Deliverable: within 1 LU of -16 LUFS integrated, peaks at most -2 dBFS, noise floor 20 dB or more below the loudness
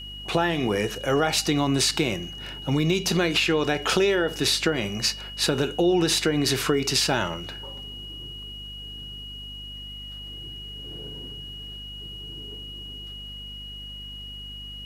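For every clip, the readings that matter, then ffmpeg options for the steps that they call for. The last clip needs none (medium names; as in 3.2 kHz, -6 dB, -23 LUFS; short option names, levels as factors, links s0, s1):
hum 50 Hz; highest harmonic 250 Hz; hum level -41 dBFS; steady tone 2.9 kHz; tone level -37 dBFS; loudness -23.5 LUFS; peak level -8.0 dBFS; loudness target -16.0 LUFS
-> -af "bandreject=f=50:t=h:w=4,bandreject=f=100:t=h:w=4,bandreject=f=150:t=h:w=4,bandreject=f=200:t=h:w=4,bandreject=f=250:t=h:w=4"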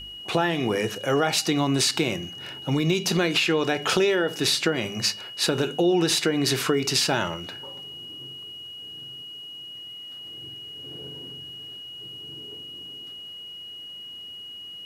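hum not found; steady tone 2.9 kHz; tone level -37 dBFS
-> -af "bandreject=f=2900:w=30"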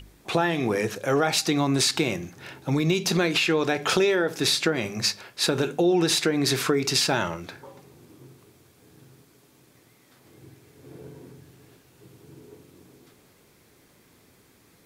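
steady tone not found; loudness -23.5 LUFS; peak level -8.5 dBFS; loudness target -16.0 LUFS
-> -af "volume=2.37,alimiter=limit=0.794:level=0:latency=1"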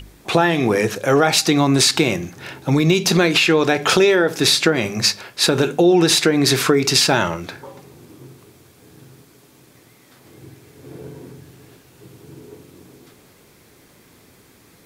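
loudness -16.0 LUFS; peak level -2.0 dBFS; noise floor -51 dBFS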